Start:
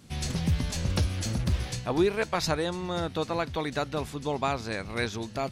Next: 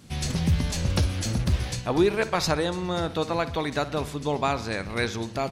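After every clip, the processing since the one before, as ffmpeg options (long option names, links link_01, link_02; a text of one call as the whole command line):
ffmpeg -i in.wav -filter_complex "[0:a]asplit=2[link_01][link_02];[link_02]adelay=61,lowpass=frequency=4600:poles=1,volume=-15dB,asplit=2[link_03][link_04];[link_04]adelay=61,lowpass=frequency=4600:poles=1,volume=0.54,asplit=2[link_05][link_06];[link_06]adelay=61,lowpass=frequency=4600:poles=1,volume=0.54,asplit=2[link_07][link_08];[link_08]adelay=61,lowpass=frequency=4600:poles=1,volume=0.54,asplit=2[link_09][link_10];[link_10]adelay=61,lowpass=frequency=4600:poles=1,volume=0.54[link_11];[link_01][link_03][link_05][link_07][link_09][link_11]amix=inputs=6:normalize=0,volume=3dB" out.wav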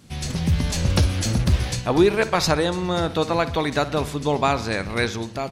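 ffmpeg -i in.wav -af "dynaudnorm=framelen=230:gausssize=5:maxgain=5dB" out.wav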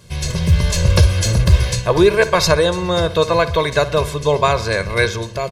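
ffmpeg -i in.wav -af "aecho=1:1:1.9:0.84,volume=3.5dB" out.wav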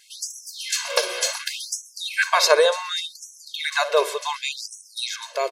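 ffmpeg -i in.wav -af "afftfilt=real='re*gte(b*sr/1024,340*pow(5500/340,0.5+0.5*sin(2*PI*0.68*pts/sr)))':imag='im*gte(b*sr/1024,340*pow(5500/340,0.5+0.5*sin(2*PI*0.68*pts/sr)))':win_size=1024:overlap=0.75,volume=-1dB" out.wav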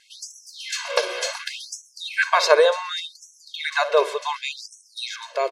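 ffmpeg -i in.wav -af "aemphasis=mode=reproduction:type=50fm,volume=1dB" out.wav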